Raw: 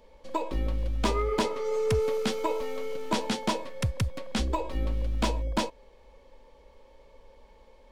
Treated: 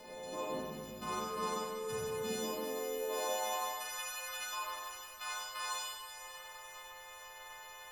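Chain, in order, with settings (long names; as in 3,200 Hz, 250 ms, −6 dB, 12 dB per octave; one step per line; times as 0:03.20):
every partial snapped to a pitch grid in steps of 3 semitones
soft clipping −13 dBFS, distortion −24 dB
0:00.99–0:02.19: parametric band 1,100 Hz +14 dB 0.45 octaves
in parallel at −9 dB: asymmetric clip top −25.5 dBFS
on the sum: downward compressor 4 to 1, threshold −48 dBFS, peak gain reduction 27.5 dB
delay with a high-pass on its return 499 ms, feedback 57%, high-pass 3,000 Hz, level −10 dB
transient designer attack −4 dB, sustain +12 dB
high-pass filter sweep 160 Hz → 1,200 Hz, 0:02.20–0:03.84
four-comb reverb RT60 1.6 s, combs from 31 ms, DRR −7.5 dB
background noise brown −71 dBFS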